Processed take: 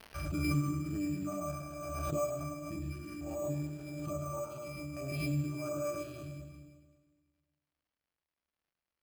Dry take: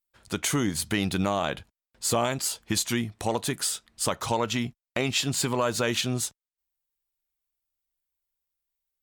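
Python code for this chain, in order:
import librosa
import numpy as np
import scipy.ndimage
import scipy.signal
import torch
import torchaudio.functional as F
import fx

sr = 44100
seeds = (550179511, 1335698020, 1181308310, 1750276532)

p1 = fx.spec_trails(x, sr, decay_s=1.57)
p2 = fx.filter_lfo_notch(p1, sr, shape='sine', hz=4.4, low_hz=240.0, high_hz=2500.0, q=0.86)
p3 = fx.octave_resonator(p2, sr, note='D', decay_s=0.43)
p4 = fx.quant_float(p3, sr, bits=2)
p5 = p3 + (p4 * librosa.db_to_amplitude(-10.5))
p6 = fx.dmg_crackle(p5, sr, seeds[0], per_s=140.0, level_db=-70.0)
p7 = p6 + fx.echo_feedback(p6, sr, ms=105, feedback_pct=30, wet_db=-5, dry=0)
p8 = np.repeat(scipy.signal.resample_poly(p7, 1, 6), 6)[:len(p7)]
y = fx.pre_swell(p8, sr, db_per_s=27.0)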